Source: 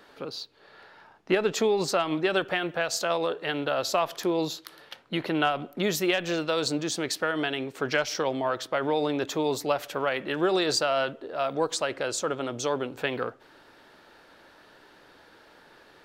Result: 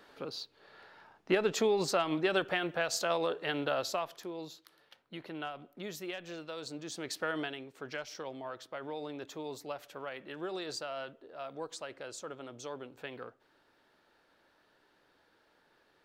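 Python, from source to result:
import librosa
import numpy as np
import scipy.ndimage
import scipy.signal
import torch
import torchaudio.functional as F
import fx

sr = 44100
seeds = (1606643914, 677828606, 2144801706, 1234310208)

y = fx.gain(x, sr, db=fx.line((3.73, -4.5), (4.28, -15.5), (6.68, -15.5), (7.34, -6.0), (7.64, -14.5)))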